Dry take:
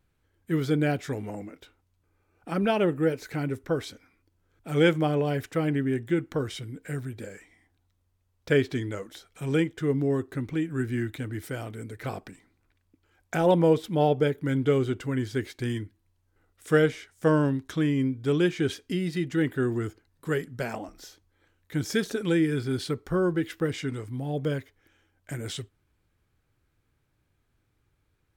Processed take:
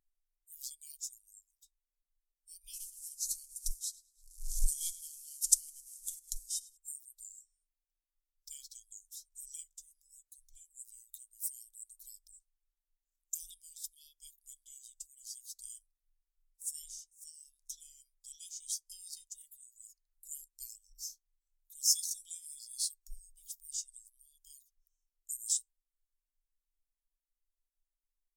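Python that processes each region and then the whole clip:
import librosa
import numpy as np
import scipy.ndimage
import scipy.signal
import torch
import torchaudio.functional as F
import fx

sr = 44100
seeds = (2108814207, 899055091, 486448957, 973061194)

y = fx.chain(x, sr, fx.cvsd(bps=64000),
    fx.echo_feedback(ms=105, feedback_pct=33, wet_db=-14.0),
    fx.pre_swell(db_per_s=61.0), at=(2.73, 6.77))
y = scipy.signal.sosfilt(scipy.signal.cheby2(4, 70, [100.0, 1400.0], 'bandstop', fs=sr, output='sos'), y)
y = fx.high_shelf(y, sr, hz=6400.0, db=7.0)
y = fx.spectral_expand(y, sr, expansion=1.5)
y = y * librosa.db_to_amplitude(9.5)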